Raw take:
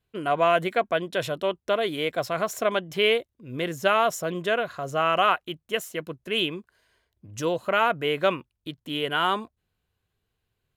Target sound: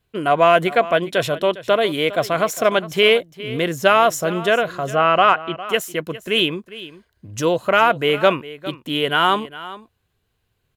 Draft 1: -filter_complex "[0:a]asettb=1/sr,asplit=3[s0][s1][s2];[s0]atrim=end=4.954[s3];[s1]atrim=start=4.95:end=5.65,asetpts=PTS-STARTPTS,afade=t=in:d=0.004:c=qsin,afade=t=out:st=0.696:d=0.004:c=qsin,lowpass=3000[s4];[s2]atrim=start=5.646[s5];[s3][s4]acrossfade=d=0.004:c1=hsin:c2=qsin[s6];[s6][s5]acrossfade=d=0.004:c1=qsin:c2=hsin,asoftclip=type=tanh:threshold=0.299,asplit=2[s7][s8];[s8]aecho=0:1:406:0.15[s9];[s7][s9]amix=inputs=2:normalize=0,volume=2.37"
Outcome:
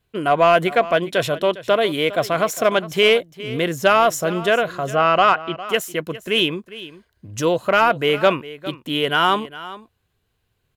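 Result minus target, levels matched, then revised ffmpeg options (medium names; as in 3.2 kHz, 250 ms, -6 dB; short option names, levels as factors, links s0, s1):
saturation: distortion +12 dB
-filter_complex "[0:a]asettb=1/sr,asplit=3[s0][s1][s2];[s0]atrim=end=4.954[s3];[s1]atrim=start=4.95:end=5.65,asetpts=PTS-STARTPTS,afade=t=in:d=0.004:c=qsin,afade=t=out:st=0.696:d=0.004:c=qsin,lowpass=3000[s4];[s2]atrim=start=5.646[s5];[s3][s4]acrossfade=d=0.004:c1=hsin:c2=qsin[s6];[s6][s5]acrossfade=d=0.004:c1=qsin:c2=hsin,asoftclip=type=tanh:threshold=0.668,asplit=2[s7][s8];[s8]aecho=0:1:406:0.15[s9];[s7][s9]amix=inputs=2:normalize=0,volume=2.37"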